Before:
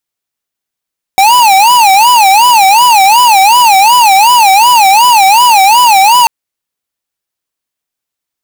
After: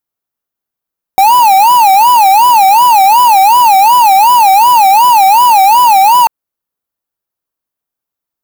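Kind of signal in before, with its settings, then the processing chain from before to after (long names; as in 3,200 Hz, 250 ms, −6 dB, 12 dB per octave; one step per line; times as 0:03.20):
siren wail 763–992 Hz 2.7 per second square −4.5 dBFS 5.09 s
flat-topped bell 4,200 Hz −8 dB 2.7 octaves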